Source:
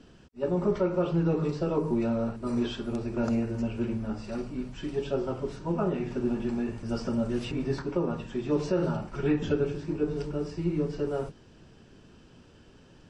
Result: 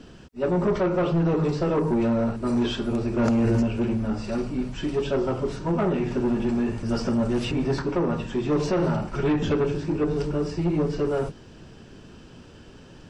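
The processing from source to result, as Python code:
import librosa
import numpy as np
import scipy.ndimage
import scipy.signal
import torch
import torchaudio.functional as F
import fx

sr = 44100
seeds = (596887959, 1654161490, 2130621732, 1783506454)

y = 10.0 ** (-25.5 / 20.0) * np.tanh(x / 10.0 ** (-25.5 / 20.0))
y = fx.env_flatten(y, sr, amount_pct=100, at=(3.19, 3.63))
y = y * 10.0 ** (8.0 / 20.0)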